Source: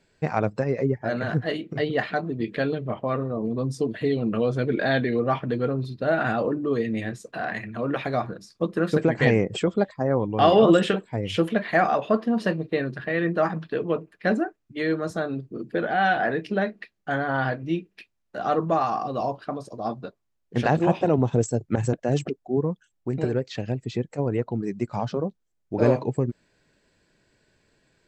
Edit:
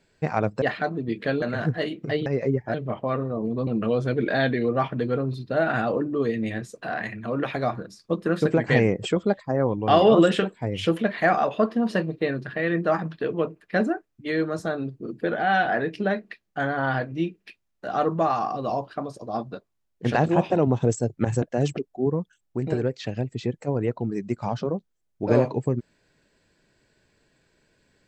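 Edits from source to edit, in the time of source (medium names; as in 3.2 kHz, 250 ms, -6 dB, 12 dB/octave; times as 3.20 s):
0.62–1.10 s: swap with 1.94–2.74 s
3.67–4.18 s: delete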